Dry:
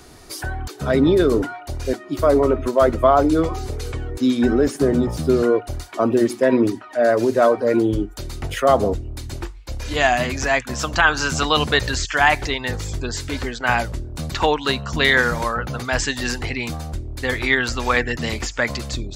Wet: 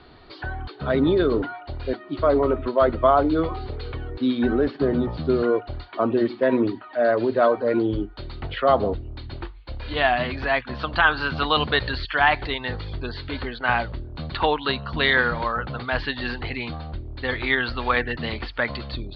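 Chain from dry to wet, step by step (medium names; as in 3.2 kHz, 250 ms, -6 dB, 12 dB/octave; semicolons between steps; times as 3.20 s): rippled Chebyshev low-pass 4.5 kHz, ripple 3 dB; trim -1.5 dB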